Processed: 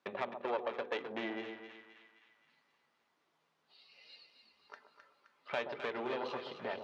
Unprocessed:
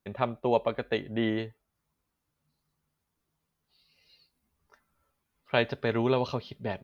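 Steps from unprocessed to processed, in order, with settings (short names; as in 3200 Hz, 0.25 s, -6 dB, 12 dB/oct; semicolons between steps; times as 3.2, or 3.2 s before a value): notches 50/100/150/200/250/300/350/400/450/500 Hz; compressor 3:1, threshold -45 dBFS, peak gain reduction 19 dB; tube stage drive 38 dB, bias 0.75; BPF 370–3800 Hz; split-band echo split 1100 Hz, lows 0.128 s, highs 0.261 s, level -8 dB; gain +12.5 dB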